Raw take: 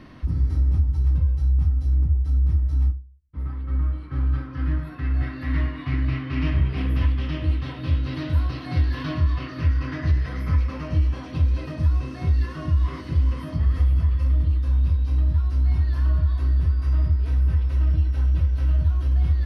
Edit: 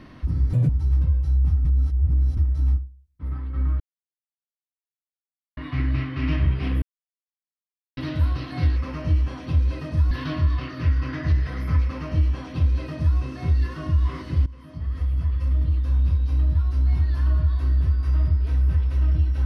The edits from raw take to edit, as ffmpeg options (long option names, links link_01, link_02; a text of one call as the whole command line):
ffmpeg -i in.wav -filter_complex "[0:a]asplit=12[link_01][link_02][link_03][link_04][link_05][link_06][link_07][link_08][link_09][link_10][link_11][link_12];[link_01]atrim=end=0.534[link_13];[link_02]atrim=start=0.53:end=0.83,asetpts=PTS-STARTPTS,asetrate=82467,aresample=44100[link_14];[link_03]atrim=start=0.826:end=1.792[link_15];[link_04]atrim=start=1.788:end=2.512,asetpts=PTS-STARTPTS,areverse[link_16];[link_05]atrim=start=2.508:end=3.94,asetpts=PTS-STARTPTS,afade=type=out:start_time=1.428:duration=0.004:curve=hsin[link_17];[link_06]atrim=start=3.94:end=5.71,asetpts=PTS-STARTPTS,volume=0[link_18];[link_07]atrim=start=5.71:end=6.96,asetpts=PTS-STARTPTS,afade=type=in:duration=0.004:curve=hsin,afade=type=out:start_time=1.246:duration=0.004:curve=hsin[link_19];[link_08]atrim=start=6.96:end=8.11,asetpts=PTS-STARTPTS,volume=0[link_20];[link_09]atrim=start=8.11:end=8.902,asetpts=PTS-STARTPTS,afade=type=in:duration=0.004:curve=hsin[link_21];[link_10]atrim=start=10.618:end=11.972[link_22];[link_11]atrim=start=8.898:end=13.25,asetpts=PTS-STARTPTS,afade=type=out:start_time=4.348:duration=0.004:curve=hsin:silence=0.1[link_23];[link_12]atrim=start=13.25,asetpts=PTS-STARTPTS,afade=type=in:duration=1.74:curve=qsin:silence=0.1[link_24];[link_13][link_14]acrossfade=duration=0.004:curve1=hsin:curve2=hsin[link_25];[link_25][link_15]acrossfade=duration=0.004:curve1=hsin:curve2=hsin[link_26];[link_26][link_16]acrossfade=duration=0.004:curve1=hsin:curve2=hsin[link_27];[link_17][link_18][link_19][link_20][link_21]concat=n=5:v=0:a=1[link_28];[link_27][link_28]acrossfade=duration=0.004:curve1=hsin:curve2=hsin[link_29];[link_29][link_22]acrossfade=duration=0.004:curve1=hsin:curve2=hsin[link_30];[link_23][link_24]concat=n=2:v=0:a=1[link_31];[link_30][link_31]acrossfade=duration=0.004:curve1=hsin:curve2=hsin" out.wav